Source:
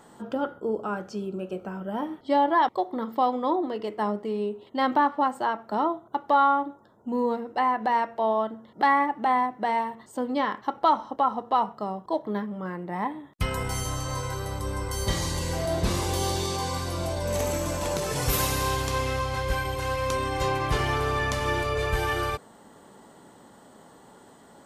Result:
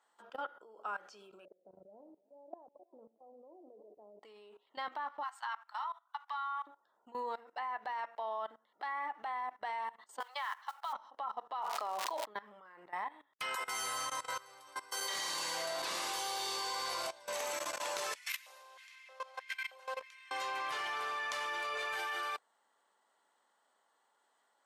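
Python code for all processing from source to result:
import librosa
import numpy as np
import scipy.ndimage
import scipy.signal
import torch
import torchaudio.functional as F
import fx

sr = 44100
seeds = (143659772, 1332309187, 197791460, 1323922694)

y = fx.chain(x, sr, fx.cheby1_lowpass(hz=600.0, order=4),
    fx.auto_swell(attack_ms=214.0),
    fx.echo_feedback(ms=329, feedback_pct=43, wet_db=-22.5), at=(1.45, 4.23))
y = fx.chain(y, sr, fx.steep_highpass(hz=920.0, slope=36),
    fx.dynamic_eq(hz=6200.0, q=0.8, threshold_db=-48.0, ratio=4.0, max_db=4),
    fx.doubler(ms=16.0, db=-11.5), at=(5.23, 6.67))
y = fx.chain(y, sr, fx.highpass(hz=810.0, slope=24),
    fx.mod_noise(seeds[0], snr_db=22),
    fx.band_squash(depth_pct=70), at=(10.2, 10.93))
y = fx.highpass(y, sr, hz=350.0, slope=12, at=(11.61, 12.24), fade=0.02)
y = fx.dmg_crackle(y, sr, seeds[1], per_s=350.0, level_db=-39.0, at=(11.61, 12.24), fade=0.02)
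y = fx.sustainer(y, sr, db_per_s=21.0, at=(11.61, 12.24), fade=0.02)
y = fx.chain(y, sr, fx.high_shelf(hz=11000.0, db=3.0),
    fx.dispersion(late='lows', ms=92.0, hz=350.0),
    fx.echo_feedback(ms=115, feedback_pct=59, wet_db=-6.5), at=(13.55, 17.07))
y = fx.chain(y, sr, fx.level_steps(step_db=12),
    fx.filter_lfo_highpass(shape='square', hz=1.6, low_hz=560.0, high_hz=2100.0, q=3.7), at=(18.15, 20.31))
y = scipy.signal.sosfilt(scipy.signal.butter(2, 980.0, 'highpass', fs=sr, output='sos'), y)
y = fx.high_shelf(y, sr, hz=6900.0, db=-8.5)
y = fx.level_steps(y, sr, step_db=19)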